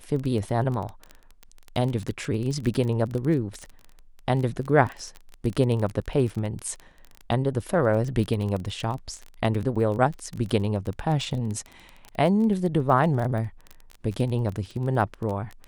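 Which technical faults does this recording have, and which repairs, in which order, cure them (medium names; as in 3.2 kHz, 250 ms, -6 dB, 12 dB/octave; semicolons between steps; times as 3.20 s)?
crackle 21 per s -29 dBFS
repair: de-click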